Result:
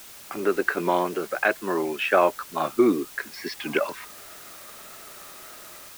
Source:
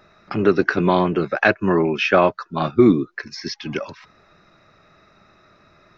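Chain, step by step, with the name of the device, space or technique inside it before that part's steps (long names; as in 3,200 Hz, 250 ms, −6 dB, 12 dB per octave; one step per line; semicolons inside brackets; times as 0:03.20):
dictaphone (band-pass filter 360–3,100 Hz; automatic gain control gain up to 13 dB; tape wow and flutter; white noise bed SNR 18 dB)
level −6 dB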